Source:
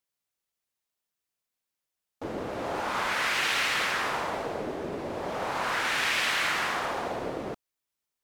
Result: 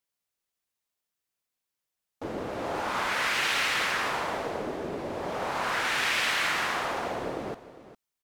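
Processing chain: echo 0.404 s -15 dB

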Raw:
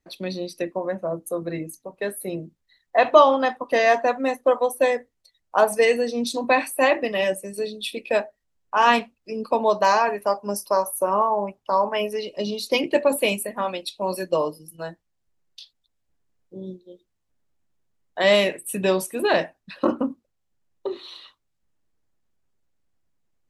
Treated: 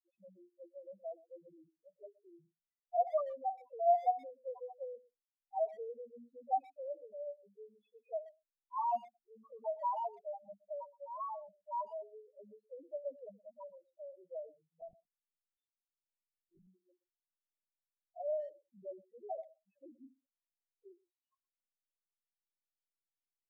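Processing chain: rattling part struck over -27 dBFS, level -17 dBFS; 10.88–11.6 compressor, threshold -22 dBFS, peak gain reduction 7 dB; loudest bins only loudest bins 1; vocal tract filter a; 14.81–16.67 monotone LPC vocoder at 8 kHz 170 Hz; speakerphone echo 0.12 s, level -21 dB; gain +1 dB

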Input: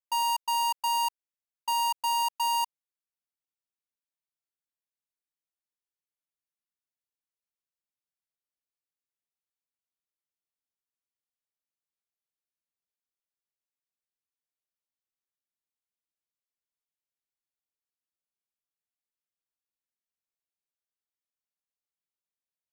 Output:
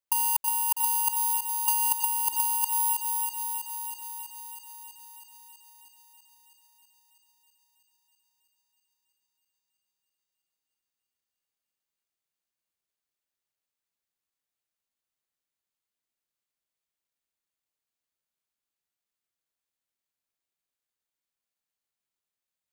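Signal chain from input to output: thinning echo 0.324 s, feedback 80%, high-pass 600 Hz, level -9.5 dB; negative-ratio compressor -29 dBFS, ratio -0.5; careless resampling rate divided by 4×, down filtered, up zero stuff

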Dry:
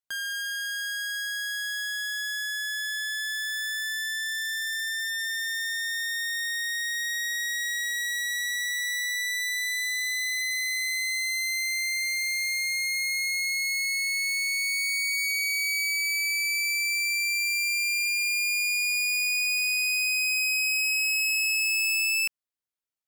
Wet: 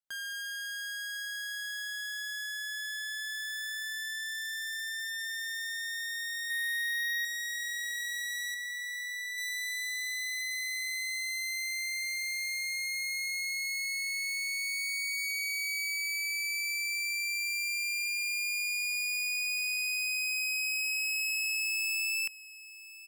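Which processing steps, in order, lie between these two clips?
6.5–7.25 comb 1 ms, depth 98%; 8.54–9.38 tilt shelf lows +6 dB, about 1500 Hz; echo 1.013 s -17.5 dB; gain -6.5 dB

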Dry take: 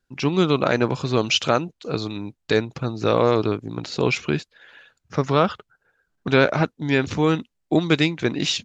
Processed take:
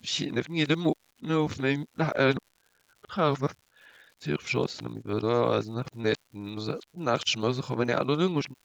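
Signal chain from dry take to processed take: whole clip reversed; notch 2700 Hz, Q 19; crackle 180/s -41 dBFS; gain -6.5 dB

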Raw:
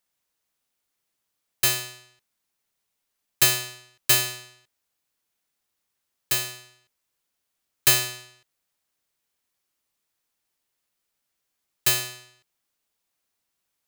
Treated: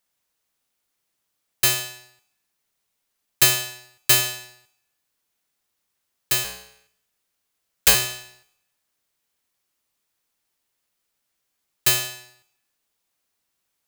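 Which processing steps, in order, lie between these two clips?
6.44–7.95 cycle switcher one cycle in 2, inverted; reverb RT60 0.75 s, pre-delay 37 ms, DRR 16.5 dB; gain +2.5 dB

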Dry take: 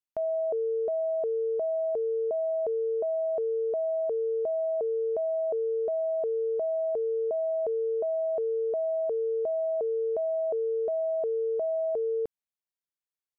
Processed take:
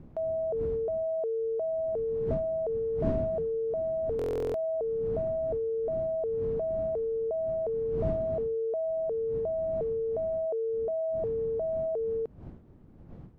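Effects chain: wind noise 200 Hz -40 dBFS; stuck buffer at 4.17, samples 1024, times 15; gain -2 dB

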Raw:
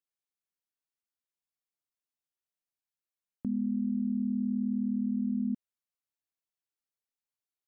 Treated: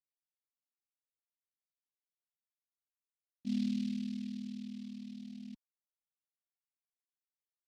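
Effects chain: expander -22 dBFS; phaser 0.28 Hz, delay 1.2 ms, feedback 75%; noise-modulated delay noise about 3500 Hz, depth 0.065 ms; gain -4 dB

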